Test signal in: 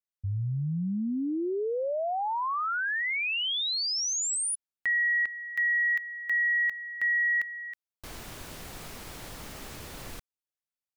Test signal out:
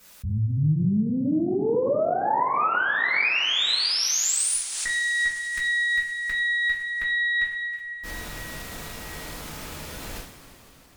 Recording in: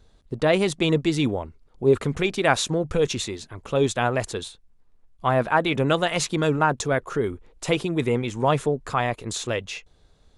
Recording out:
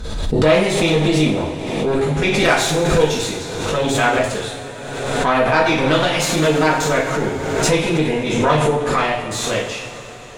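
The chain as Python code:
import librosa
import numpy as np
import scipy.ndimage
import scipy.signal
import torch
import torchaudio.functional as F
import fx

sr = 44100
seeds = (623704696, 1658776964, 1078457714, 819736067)

y = fx.cheby_harmonics(x, sr, harmonics=(6,), levels_db=(-18,), full_scale_db=-4.0)
y = fx.rev_double_slope(y, sr, seeds[0], early_s=0.54, late_s=4.8, knee_db=-17, drr_db=-8.0)
y = fx.pre_swell(y, sr, db_per_s=34.0)
y = F.gain(torch.from_numpy(y), -3.0).numpy()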